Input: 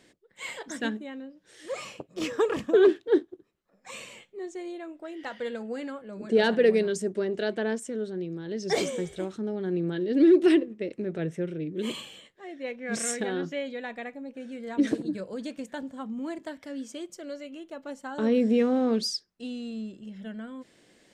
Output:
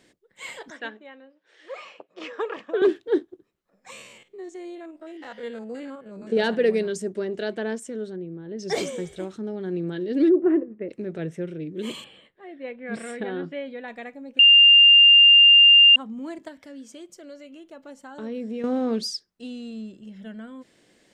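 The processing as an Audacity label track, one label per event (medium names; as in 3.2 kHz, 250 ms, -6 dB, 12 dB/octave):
0.700000	2.820000	band-pass 530–3100 Hz
3.920000	6.370000	spectrogram pixelated in time every 50 ms
8.160000	8.590000	tape spacing loss at 10 kHz 38 dB
10.280000	10.880000	low-pass 1.1 kHz -> 2.1 kHz 24 dB/octave
12.040000	13.880000	boxcar filter over 7 samples
14.390000	15.960000	bleep 2.8 kHz -9 dBFS
16.480000	18.640000	compression 1.5:1, threshold -45 dBFS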